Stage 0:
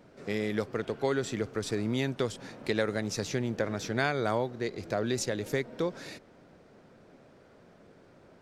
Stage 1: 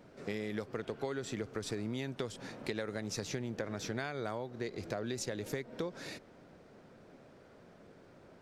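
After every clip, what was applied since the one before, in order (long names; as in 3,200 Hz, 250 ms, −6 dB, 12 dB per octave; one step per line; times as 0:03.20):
downward compressor, threshold −33 dBFS, peak gain reduction 10.5 dB
level −1 dB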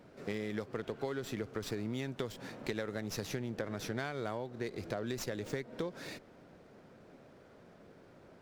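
windowed peak hold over 3 samples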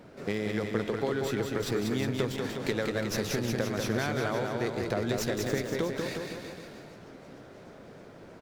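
bouncing-ball delay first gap 190 ms, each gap 0.9×, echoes 5
feedback echo with a swinging delay time 308 ms, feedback 78%, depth 168 cents, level −22.5 dB
level +6.5 dB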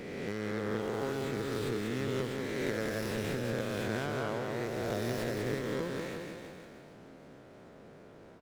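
peak hold with a rise ahead of every peak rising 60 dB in 2.27 s
windowed peak hold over 5 samples
level −8 dB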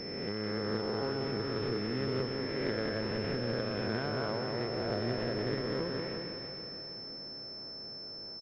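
repeating echo 465 ms, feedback 48%, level −13.5 dB
switching amplifier with a slow clock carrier 5,300 Hz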